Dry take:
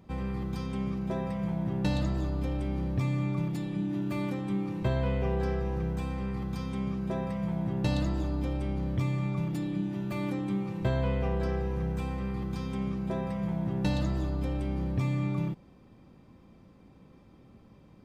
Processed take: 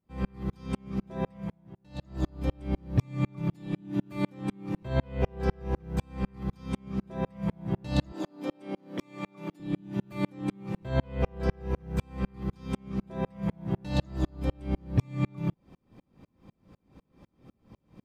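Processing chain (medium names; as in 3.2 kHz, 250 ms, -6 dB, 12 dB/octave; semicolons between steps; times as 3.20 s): 1.28–2.27 s: dip -18 dB, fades 0.34 s; 8.12–9.60 s: high-pass 230 Hz 24 dB/octave; sawtooth tremolo in dB swelling 4 Hz, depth 39 dB; trim +8.5 dB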